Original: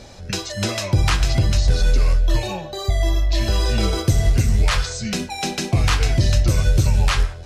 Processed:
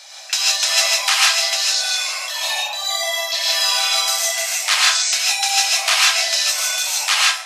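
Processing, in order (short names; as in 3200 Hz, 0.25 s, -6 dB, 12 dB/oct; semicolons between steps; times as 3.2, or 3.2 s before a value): steep high-pass 650 Hz 48 dB/oct; tilt shelf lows -7 dB, about 1500 Hz; non-linear reverb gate 0.18 s rising, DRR -4.5 dB; gain +1.5 dB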